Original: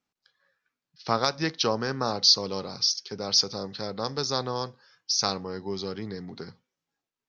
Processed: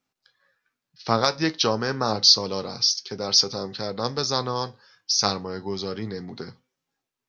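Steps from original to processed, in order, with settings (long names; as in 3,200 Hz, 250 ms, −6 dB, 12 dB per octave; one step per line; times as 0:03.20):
flanger 0.29 Hz, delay 7.5 ms, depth 2.3 ms, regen +71%
level +8 dB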